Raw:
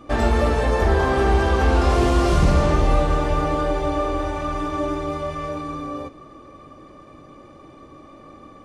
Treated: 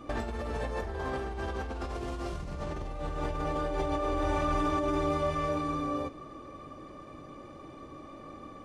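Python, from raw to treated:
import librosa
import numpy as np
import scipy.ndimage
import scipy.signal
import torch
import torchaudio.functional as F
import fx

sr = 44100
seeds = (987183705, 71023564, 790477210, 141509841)

y = fx.over_compress(x, sr, threshold_db=-25.0, ratio=-1.0)
y = y * 10.0 ** (-7.5 / 20.0)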